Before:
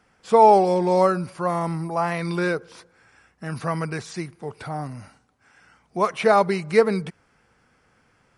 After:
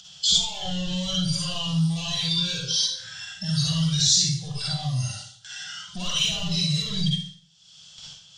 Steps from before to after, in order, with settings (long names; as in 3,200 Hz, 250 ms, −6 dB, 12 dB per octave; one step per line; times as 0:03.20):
mid-hump overdrive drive 36 dB, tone 6,400 Hz, clips at −3.5 dBFS
noise gate with hold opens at −23 dBFS
upward compression, threshold −29 dBFS
brickwall limiter −18.5 dBFS, peak gain reduction 15 dB
parametric band 380 Hz −10 dB 1.9 octaves
noise reduction from a noise print of the clip's start 15 dB
drawn EQ curve 180 Hz 0 dB, 270 Hz −25 dB, 410 Hz −21 dB, 620 Hz −15 dB, 920 Hz −22 dB, 2,200 Hz −25 dB, 3,300 Hz +11 dB, 4,800 Hz +4 dB, 7,100 Hz +7 dB, 10,000 Hz −16 dB
convolution reverb RT60 0.50 s, pre-delay 43 ms, DRR −4.5 dB
multiband upward and downward compressor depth 40%